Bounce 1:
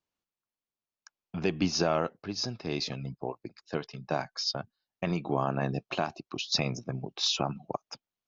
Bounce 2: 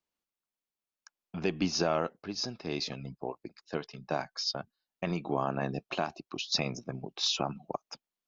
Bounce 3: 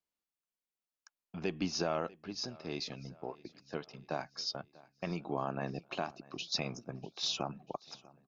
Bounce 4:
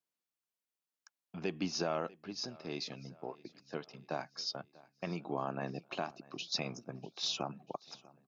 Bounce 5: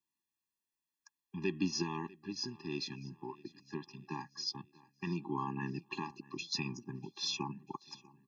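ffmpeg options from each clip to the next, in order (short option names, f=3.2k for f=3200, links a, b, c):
-af "equalizer=f=110:w=2.2:g=-7,volume=-1.5dB"
-af "aecho=1:1:643|1286|1929|2572:0.0794|0.0429|0.0232|0.0125,volume=-5dB"
-af "highpass=110,volume=-1dB"
-af "afftfilt=real='re*eq(mod(floor(b*sr/1024/400),2),0)':imag='im*eq(mod(floor(b*sr/1024/400),2),0)':win_size=1024:overlap=0.75,volume=3dB"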